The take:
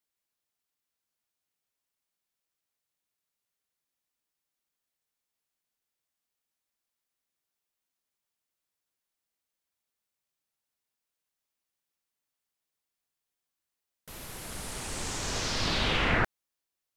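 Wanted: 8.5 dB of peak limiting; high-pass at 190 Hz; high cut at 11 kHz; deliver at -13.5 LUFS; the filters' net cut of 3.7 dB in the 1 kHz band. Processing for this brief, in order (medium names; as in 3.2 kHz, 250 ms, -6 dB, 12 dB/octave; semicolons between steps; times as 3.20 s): high-pass 190 Hz; low-pass 11 kHz; peaking EQ 1 kHz -5 dB; trim +22.5 dB; peak limiter -3.5 dBFS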